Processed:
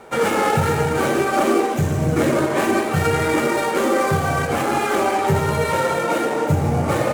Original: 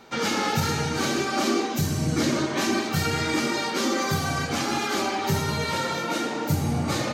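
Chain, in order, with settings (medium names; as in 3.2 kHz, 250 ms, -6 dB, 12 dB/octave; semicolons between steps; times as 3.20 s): median filter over 9 samples; graphic EQ 250/500/4000/8000 Hz -6/+6/-5/+4 dB; trim +7 dB; AAC 192 kbps 48 kHz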